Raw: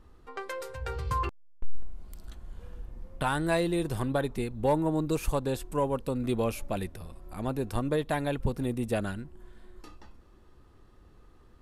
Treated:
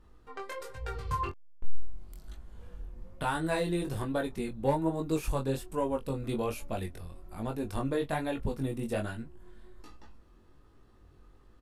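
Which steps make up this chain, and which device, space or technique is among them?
double-tracked vocal (doubler 22 ms -12 dB; chorus 1.2 Hz, delay 17.5 ms, depth 5.3 ms)

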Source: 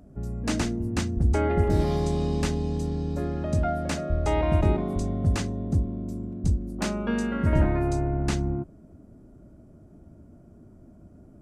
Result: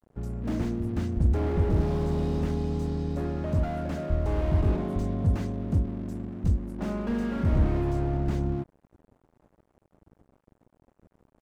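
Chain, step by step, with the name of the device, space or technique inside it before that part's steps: early transistor amplifier (crossover distortion -46.5 dBFS; slew limiter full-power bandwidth 17 Hz)

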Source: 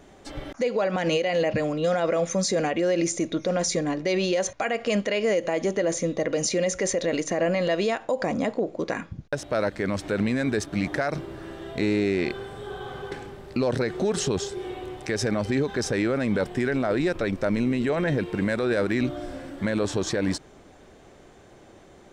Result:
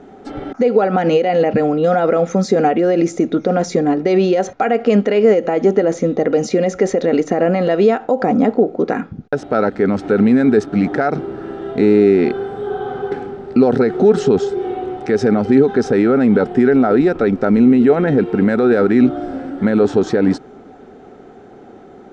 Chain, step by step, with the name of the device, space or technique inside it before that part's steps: inside a cardboard box (LPF 5900 Hz 12 dB/oct; small resonant body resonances 250/410/740/1300 Hz, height 16 dB, ringing for 25 ms); gain -1.5 dB

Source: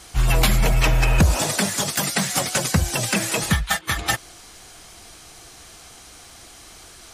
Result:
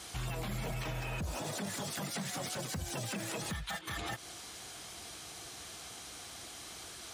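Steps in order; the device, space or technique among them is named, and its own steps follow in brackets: broadcast voice chain (HPF 79 Hz 12 dB/oct; de-esser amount 55%; compressor 4:1, threshold -28 dBFS, peak gain reduction 13.5 dB; bell 3500 Hz +3 dB 0.46 oct; limiter -26 dBFS, peak gain reduction 10 dB); gain -3.5 dB

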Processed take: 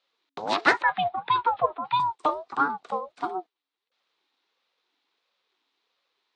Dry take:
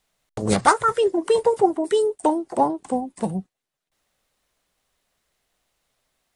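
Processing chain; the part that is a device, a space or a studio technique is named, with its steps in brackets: 0.82–2 elliptic band-pass 370–3300 Hz, stop band 40 dB; voice changer toy (ring modulator with a swept carrier 420 Hz, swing 35%, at 1.5 Hz; speaker cabinet 470–4700 Hz, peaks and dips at 600 Hz -7 dB, 1600 Hz -3 dB, 3800 Hz +6 dB); gain +2 dB

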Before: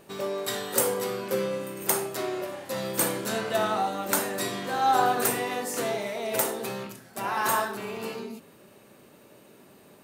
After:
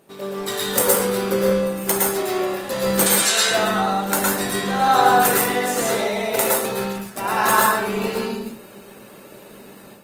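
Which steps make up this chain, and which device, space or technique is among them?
3.06–3.51 weighting filter ITU-R 468; far-field microphone of a smart speaker (reverb RT60 0.30 s, pre-delay 0.108 s, DRR -1.5 dB; HPF 100 Hz 12 dB/oct; AGC gain up to 9 dB; gain -1 dB; Opus 24 kbps 48000 Hz)

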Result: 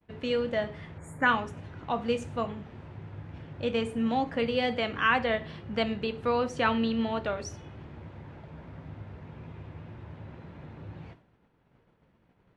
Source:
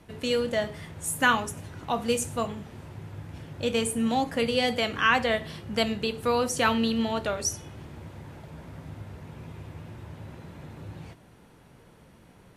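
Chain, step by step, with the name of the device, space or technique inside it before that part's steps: spectral gain 0.98–1.26, 2400–6600 Hz -17 dB; hearing-loss simulation (LPF 3000 Hz 12 dB/oct; expander -46 dBFS); gain -2 dB

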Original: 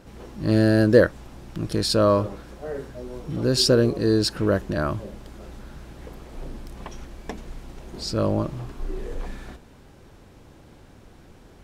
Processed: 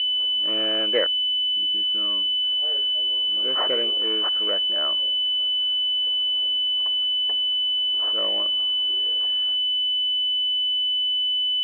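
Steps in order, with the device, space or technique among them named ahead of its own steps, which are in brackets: 1.06–2.44 EQ curve 310 Hz 0 dB, 530 Hz -21 dB, 1600 Hz -10 dB, 4200 Hz -30 dB; toy sound module (decimation joined by straight lines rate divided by 8×; pulse-width modulation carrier 3000 Hz; speaker cabinet 740–3600 Hz, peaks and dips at 880 Hz -6 dB, 1900 Hz +6 dB, 2800 Hz +7 dB)

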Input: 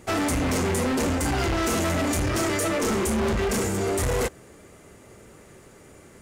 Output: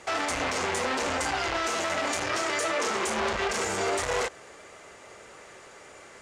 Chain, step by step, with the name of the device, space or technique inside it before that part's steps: 1.71–3.18 HPF 99 Hz; DJ mixer with the lows and highs turned down (three-band isolator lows -18 dB, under 510 Hz, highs -24 dB, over 7800 Hz; limiter -25.5 dBFS, peak gain reduction 9 dB); gain +6.5 dB

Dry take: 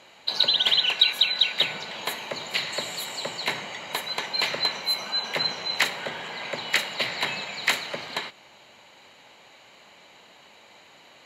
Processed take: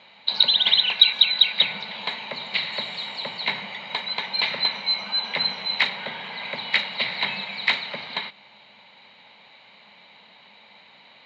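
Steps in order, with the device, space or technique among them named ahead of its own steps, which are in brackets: guitar cabinet (speaker cabinet 76–4500 Hz, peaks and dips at 200 Hz +9 dB, 340 Hz -7 dB, 910 Hz +5 dB, 2200 Hz +7 dB, 3800 Hz +9 dB); gain -3 dB

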